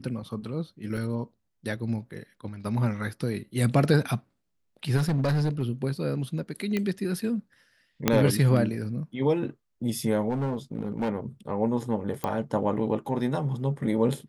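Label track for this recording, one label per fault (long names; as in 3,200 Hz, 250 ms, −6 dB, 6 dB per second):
0.970000	0.970000	drop-out 4.8 ms
4.960000	5.630000	clipping −21 dBFS
6.770000	6.770000	click −15 dBFS
8.080000	8.080000	click −5 dBFS
10.290000	11.090000	clipping −24 dBFS
12.240000	12.240000	click −15 dBFS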